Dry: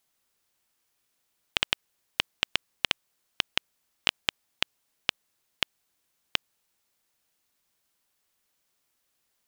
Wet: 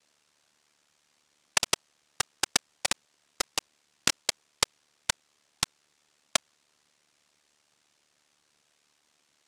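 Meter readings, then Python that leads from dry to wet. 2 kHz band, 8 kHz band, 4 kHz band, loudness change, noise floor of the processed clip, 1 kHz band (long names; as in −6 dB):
−2.0 dB, +14.5 dB, −2.5 dB, +0.5 dB, −72 dBFS, +3.5 dB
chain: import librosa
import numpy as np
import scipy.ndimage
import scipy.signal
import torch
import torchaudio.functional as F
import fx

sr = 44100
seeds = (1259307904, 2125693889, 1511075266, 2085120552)

y = fx.noise_vocoder(x, sr, seeds[0], bands=1)
y = y * np.sin(2.0 * np.pi * 37.0 * np.arange(len(y)) / sr)
y = y * 10.0 ** (4.0 / 20.0)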